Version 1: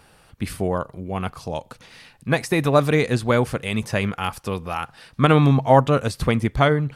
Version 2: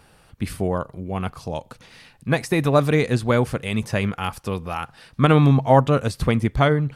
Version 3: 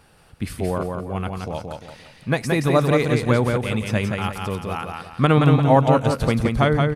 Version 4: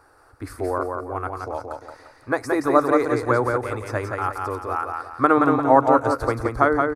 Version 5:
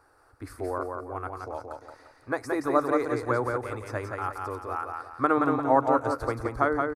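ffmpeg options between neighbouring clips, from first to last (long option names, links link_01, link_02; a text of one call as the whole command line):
ffmpeg -i in.wav -af "lowshelf=frequency=340:gain=3,volume=-1.5dB" out.wav
ffmpeg -i in.wav -af "aecho=1:1:174|348|522|696|870:0.631|0.233|0.0864|0.032|0.0118,volume=-1dB" out.wav
ffmpeg -i in.wav -af "firequalizer=gain_entry='entry(120,0);entry(170,-27);entry(280,8);entry(540,6);entry(1300,13);entry(3000,-14);entry(4500,1)':delay=0.05:min_phase=1,volume=-6.5dB" out.wav
ffmpeg -i in.wav -filter_complex "[0:a]asplit=2[link_01][link_02];[link_02]adelay=758,volume=-29dB,highshelf=frequency=4000:gain=-17.1[link_03];[link_01][link_03]amix=inputs=2:normalize=0,volume=-6.5dB" out.wav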